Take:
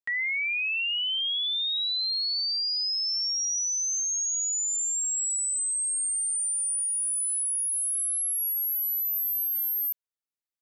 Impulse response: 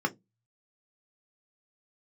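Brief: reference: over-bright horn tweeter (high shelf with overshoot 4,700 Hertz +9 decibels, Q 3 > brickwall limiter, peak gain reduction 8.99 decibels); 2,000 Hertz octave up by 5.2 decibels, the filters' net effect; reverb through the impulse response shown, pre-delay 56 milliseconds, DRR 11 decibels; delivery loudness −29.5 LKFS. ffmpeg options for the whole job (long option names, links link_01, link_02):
-filter_complex "[0:a]equalizer=frequency=2000:width_type=o:gain=9,asplit=2[link_01][link_02];[1:a]atrim=start_sample=2205,adelay=56[link_03];[link_02][link_03]afir=irnorm=-1:irlink=0,volume=-19.5dB[link_04];[link_01][link_04]amix=inputs=2:normalize=0,highshelf=frequency=4700:width_type=q:width=3:gain=9,volume=-11dB,alimiter=level_in=4.5dB:limit=-24dB:level=0:latency=1,volume=-4.5dB"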